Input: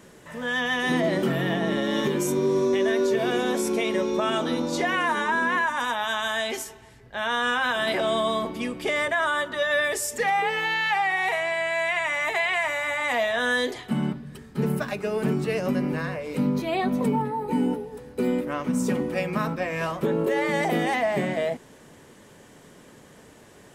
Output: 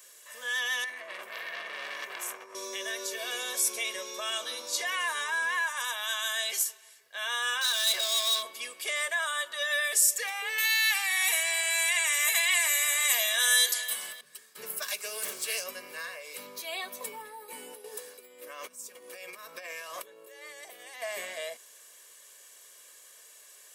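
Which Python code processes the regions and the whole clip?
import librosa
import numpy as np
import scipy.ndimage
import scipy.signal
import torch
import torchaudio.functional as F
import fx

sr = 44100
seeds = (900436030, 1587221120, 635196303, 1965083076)

y = fx.chain(x, sr, fx.high_shelf_res(hz=2700.0, db=-8.0, q=3.0),
    fx.over_compress(threshold_db=-25.0, ratio=-0.5),
    fx.transformer_sat(knee_hz=1600.0), at=(0.84, 2.55))
y = fx.chain(y, sr, fx.peak_eq(hz=3800.0, db=12.0, octaves=0.3),
    fx.clip_hard(threshold_db=-22.5), at=(7.61, 8.43))
y = fx.chain(y, sr, fx.riaa(side='recording'),
    fx.quant_float(bits=8),
    fx.echo_filtered(ms=290, feedback_pct=47, hz=3700.0, wet_db=-12.0), at=(10.58, 14.21))
y = fx.chain(y, sr, fx.high_shelf(hz=4100.0, db=11.0),
    fx.doppler_dist(depth_ms=0.35), at=(14.82, 15.64))
y = fx.chain(y, sr, fx.over_compress(threshold_db=-35.0, ratio=-1.0),
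    fx.peak_eq(hz=350.0, db=4.0, octaves=1.7), at=(17.84, 21.02))
y = scipy.signal.sosfilt(scipy.signal.butter(2, 300.0, 'highpass', fs=sr, output='sos'), y)
y = np.diff(y, prepend=0.0)
y = y + 0.52 * np.pad(y, (int(1.8 * sr / 1000.0), 0))[:len(y)]
y = y * librosa.db_to_amplitude(5.5)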